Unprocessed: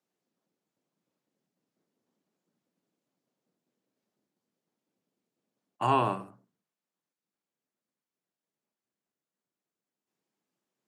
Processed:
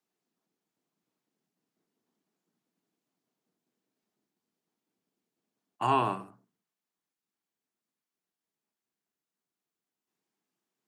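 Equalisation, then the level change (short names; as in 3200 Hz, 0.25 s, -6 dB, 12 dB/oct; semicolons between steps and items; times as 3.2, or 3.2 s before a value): low shelf 150 Hz -5 dB; bell 550 Hz -10 dB 0.2 oct; 0.0 dB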